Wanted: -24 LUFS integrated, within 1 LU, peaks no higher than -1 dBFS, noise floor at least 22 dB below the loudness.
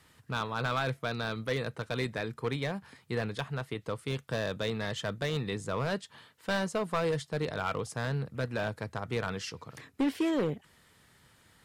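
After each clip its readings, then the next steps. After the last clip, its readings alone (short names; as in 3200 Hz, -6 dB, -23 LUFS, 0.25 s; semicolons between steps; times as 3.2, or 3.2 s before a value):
clipped 1.3%; flat tops at -23.5 dBFS; loudness -34.0 LUFS; peak -23.5 dBFS; loudness target -24.0 LUFS
-> clip repair -23.5 dBFS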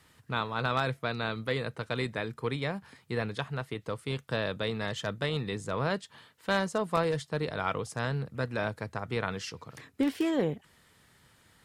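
clipped 0.0%; loudness -32.5 LUFS; peak -14.5 dBFS; loudness target -24.0 LUFS
-> gain +8.5 dB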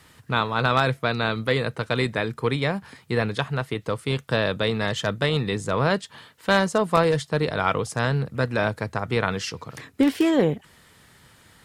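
loudness -24.0 LUFS; peak -6.0 dBFS; noise floor -55 dBFS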